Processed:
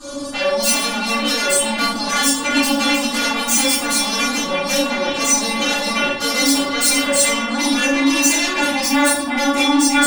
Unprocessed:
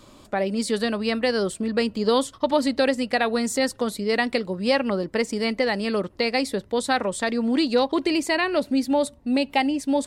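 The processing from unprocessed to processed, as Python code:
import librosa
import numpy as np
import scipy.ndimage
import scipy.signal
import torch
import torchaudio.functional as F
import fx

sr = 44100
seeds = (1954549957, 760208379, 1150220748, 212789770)

p1 = fx.over_compress(x, sr, threshold_db=-31.0, ratio=-1.0)
p2 = x + F.gain(torch.from_numpy(p1), -1.0).numpy()
p3 = scipy.signal.sosfilt(scipy.signal.butter(4, 10000.0, 'lowpass', fs=sr, output='sos'), p2)
p4 = fx.band_shelf(p3, sr, hz=2800.0, db=-9.0, octaves=1.1)
p5 = fx.fold_sine(p4, sr, drive_db=16, ceiling_db=-6.0)
p6 = fx.highpass(p5, sr, hz=210.0, slope=6)
p7 = fx.high_shelf(p6, sr, hz=4000.0, db=7.5)
p8 = fx.stiff_resonator(p7, sr, f0_hz=280.0, decay_s=0.21, stiffness=0.002)
p9 = p8 + fx.echo_stepped(p8, sr, ms=351, hz=2600.0, octaves=-1.4, feedback_pct=70, wet_db=-1.5, dry=0)
p10 = fx.room_shoebox(p9, sr, seeds[0], volume_m3=98.0, walls='mixed', distance_m=3.6)
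y = F.gain(torch.from_numpy(p10), -9.0).numpy()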